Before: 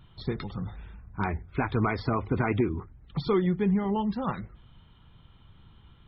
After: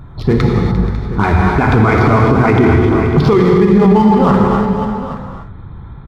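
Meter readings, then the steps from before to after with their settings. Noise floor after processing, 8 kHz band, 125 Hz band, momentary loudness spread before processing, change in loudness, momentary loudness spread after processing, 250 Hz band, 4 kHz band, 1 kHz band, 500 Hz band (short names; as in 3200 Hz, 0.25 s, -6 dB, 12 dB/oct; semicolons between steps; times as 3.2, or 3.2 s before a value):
-32 dBFS, n/a, +19.0 dB, 13 LU, +17.5 dB, 9 LU, +18.0 dB, +14.5 dB, +18.5 dB, +18.5 dB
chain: Wiener smoothing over 15 samples; on a send: tapped delay 0.348/0.48/0.548/0.828 s -13.5/-17/-15.5/-16 dB; on the sum: non-linear reverb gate 0.32 s flat, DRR 0.5 dB; maximiser +21 dB; gain -1 dB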